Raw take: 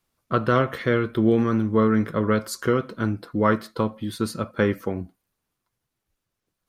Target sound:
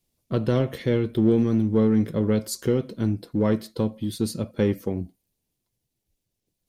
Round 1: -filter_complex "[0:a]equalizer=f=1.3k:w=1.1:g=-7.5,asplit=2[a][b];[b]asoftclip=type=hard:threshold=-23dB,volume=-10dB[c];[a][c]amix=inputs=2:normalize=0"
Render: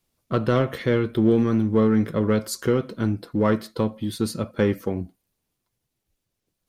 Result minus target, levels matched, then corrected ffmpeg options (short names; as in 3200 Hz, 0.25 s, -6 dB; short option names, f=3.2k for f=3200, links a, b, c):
1000 Hz band +6.0 dB
-filter_complex "[0:a]equalizer=f=1.3k:w=1.1:g=-18,asplit=2[a][b];[b]asoftclip=type=hard:threshold=-23dB,volume=-10dB[c];[a][c]amix=inputs=2:normalize=0"